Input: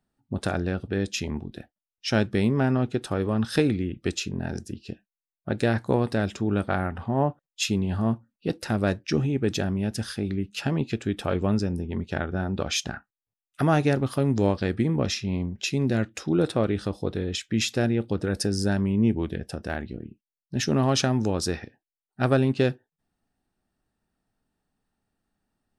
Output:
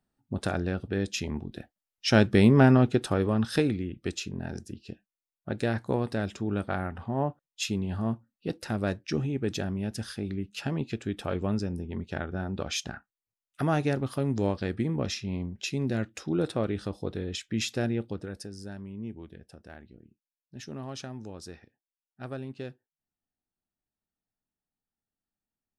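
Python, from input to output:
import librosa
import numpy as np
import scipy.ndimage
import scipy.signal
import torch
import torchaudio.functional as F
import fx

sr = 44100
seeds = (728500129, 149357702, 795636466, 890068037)

y = fx.gain(x, sr, db=fx.line((1.31, -2.5), (2.63, 5.0), (3.84, -5.0), (17.98, -5.0), (18.51, -16.5)))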